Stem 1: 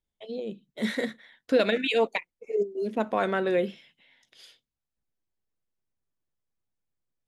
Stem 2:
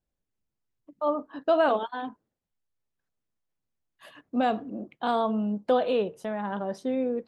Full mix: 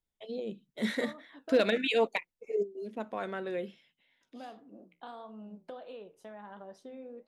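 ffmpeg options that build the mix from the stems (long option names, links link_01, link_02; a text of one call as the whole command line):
ffmpeg -i stem1.wav -i stem2.wav -filter_complex "[0:a]volume=-3dB,afade=type=out:start_time=2.52:duration=0.29:silence=0.421697[link_01];[1:a]highpass=frequency=280:poles=1,acompressor=threshold=-31dB:ratio=5,flanger=delay=9.9:depth=4.7:regen=-74:speed=1.5:shape=sinusoidal,volume=-7.5dB,asplit=3[link_02][link_03][link_04];[link_02]atrim=end=1.63,asetpts=PTS-STARTPTS,afade=type=out:start_time=1.626:duration=0.004:curve=hsin[link_05];[link_03]atrim=start=1.63:end=4.21,asetpts=PTS-STARTPTS,volume=0[link_06];[link_04]atrim=start=4.21,asetpts=PTS-STARTPTS,afade=type=in:duration=0.004:curve=hsin[link_07];[link_05][link_06][link_07]concat=n=3:v=0:a=1[link_08];[link_01][link_08]amix=inputs=2:normalize=0,asoftclip=type=hard:threshold=-16.5dB" out.wav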